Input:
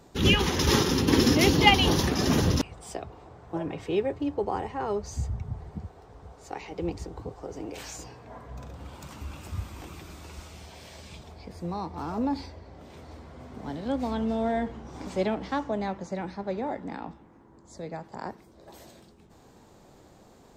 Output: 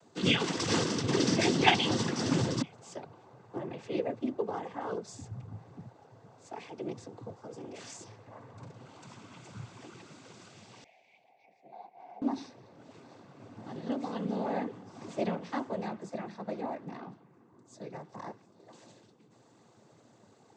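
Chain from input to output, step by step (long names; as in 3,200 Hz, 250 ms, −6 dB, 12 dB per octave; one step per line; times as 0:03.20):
cochlear-implant simulation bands 16
0:10.84–0:12.22: pair of resonant band-passes 1,300 Hz, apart 1.6 octaves
level −5 dB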